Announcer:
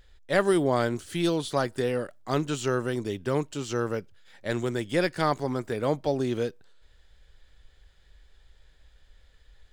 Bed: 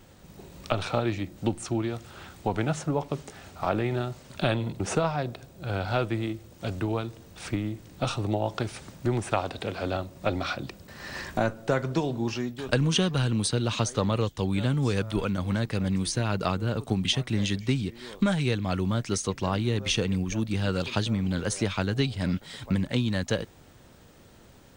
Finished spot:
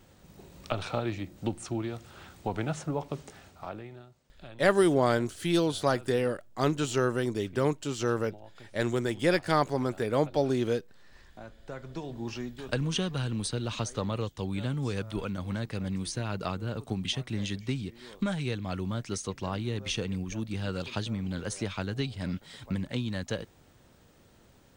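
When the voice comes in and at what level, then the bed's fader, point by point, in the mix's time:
4.30 s, 0.0 dB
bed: 3.34 s -4.5 dB
4.11 s -22.5 dB
11.31 s -22.5 dB
12.34 s -6 dB

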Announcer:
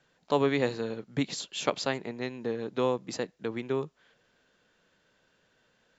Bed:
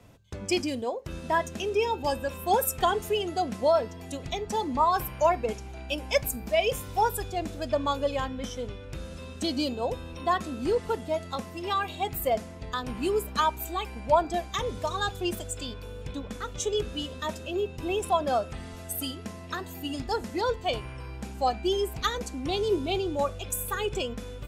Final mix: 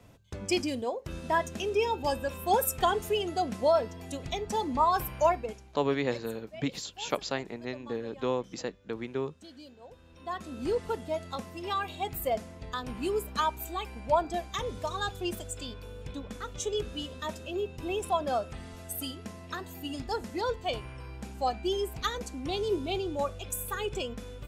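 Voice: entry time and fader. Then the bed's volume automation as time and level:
5.45 s, -2.5 dB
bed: 5.28 s -1.5 dB
5.94 s -21 dB
9.88 s -21 dB
10.62 s -3.5 dB

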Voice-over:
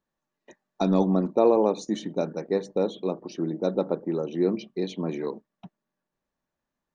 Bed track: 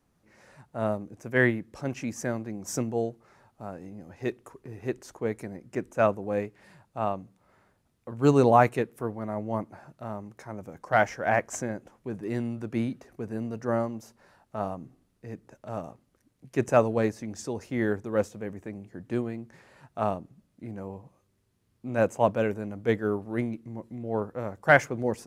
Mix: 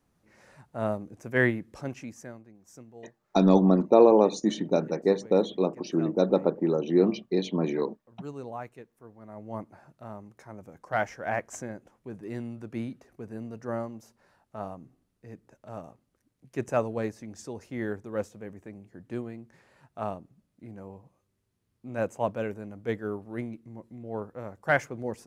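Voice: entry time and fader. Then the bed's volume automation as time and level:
2.55 s, +2.5 dB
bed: 1.77 s -1 dB
2.59 s -19.5 dB
9.00 s -19.5 dB
9.59 s -5.5 dB

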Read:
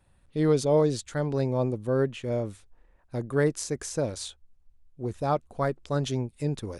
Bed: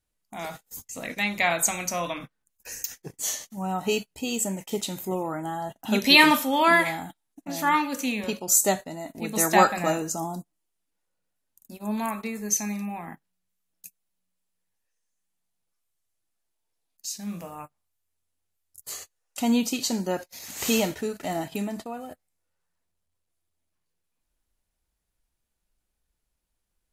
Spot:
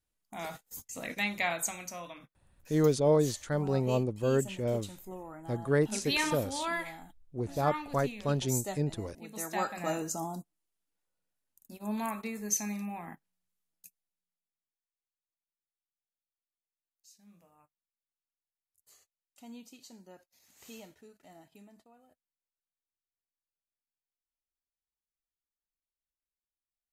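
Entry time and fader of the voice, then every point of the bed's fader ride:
2.35 s, -2.5 dB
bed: 1.18 s -4.5 dB
2.09 s -15 dB
9.59 s -15 dB
10.00 s -5.5 dB
13.61 s -5.5 dB
14.92 s -25.5 dB

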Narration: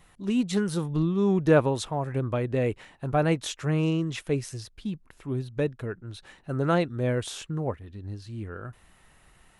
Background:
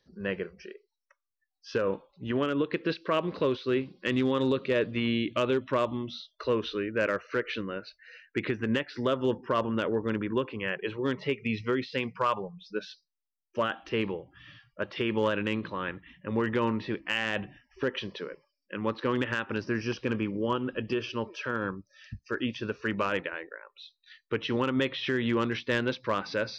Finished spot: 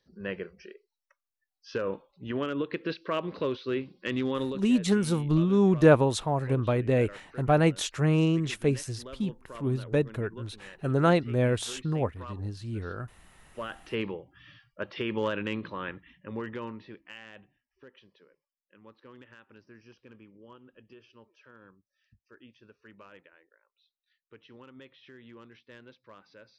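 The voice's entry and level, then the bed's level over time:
4.35 s, +1.5 dB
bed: 4.42 s -3 dB
4.69 s -17 dB
13.23 s -17 dB
13.93 s -2.5 dB
15.96 s -2.5 dB
17.69 s -23 dB

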